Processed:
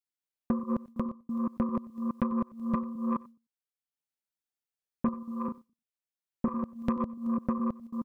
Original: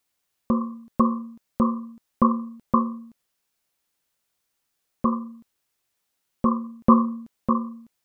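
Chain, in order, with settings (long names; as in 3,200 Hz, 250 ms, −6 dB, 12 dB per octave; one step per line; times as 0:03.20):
delay that plays each chunk backwards 211 ms, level −3 dB
noise gate with hold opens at −35 dBFS
notch filter 1,100 Hz, Q 8
downward compressor 5 to 1, threshold −27 dBFS, peak gain reduction 14.5 dB
0:00.87–0:01.29: fade out
transient designer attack +4 dB, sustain −4 dB
soft clipping −17.5 dBFS, distortion −15 dB
0:05.19–0:06.63: double-tracking delay 37 ms −7.5 dB
single-tap delay 93 ms −21.5 dB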